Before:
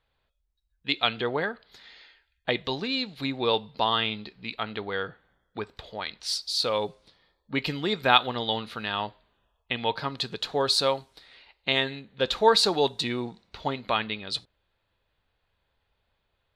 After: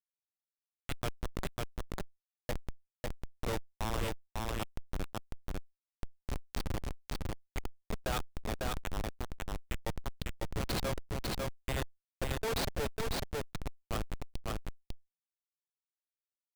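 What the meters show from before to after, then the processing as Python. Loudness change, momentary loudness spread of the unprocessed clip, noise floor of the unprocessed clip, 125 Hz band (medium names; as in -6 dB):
-12.5 dB, 15 LU, -76 dBFS, -0.5 dB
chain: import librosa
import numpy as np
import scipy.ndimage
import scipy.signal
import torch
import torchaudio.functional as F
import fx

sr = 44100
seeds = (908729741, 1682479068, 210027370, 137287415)

p1 = fx.reverse_delay(x, sr, ms=495, wet_db=-12.0)
p2 = scipy.signal.sosfilt(scipy.signal.cheby1(6, 3, 420.0, 'highpass', fs=sr, output='sos'), p1)
p3 = fx.high_shelf_res(p2, sr, hz=6000.0, db=6.5, q=1.5)
p4 = fx.schmitt(p3, sr, flips_db=-21.5)
p5 = p4 + fx.echo_single(p4, sr, ms=549, db=-4.0, dry=0)
p6 = fx.env_flatten(p5, sr, amount_pct=50)
y = p6 * 10.0 ** (-2.0 / 20.0)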